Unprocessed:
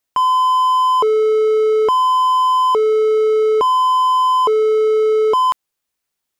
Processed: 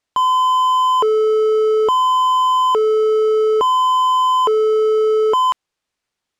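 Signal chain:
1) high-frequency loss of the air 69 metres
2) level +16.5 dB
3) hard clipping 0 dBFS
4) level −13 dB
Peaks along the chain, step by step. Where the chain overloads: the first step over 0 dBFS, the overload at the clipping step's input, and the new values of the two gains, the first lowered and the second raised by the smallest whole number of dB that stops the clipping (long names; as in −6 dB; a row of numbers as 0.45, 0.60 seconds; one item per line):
−9.5, +7.0, 0.0, −13.0 dBFS
step 2, 7.0 dB
step 2 +9.5 dB, step 4 −6 dB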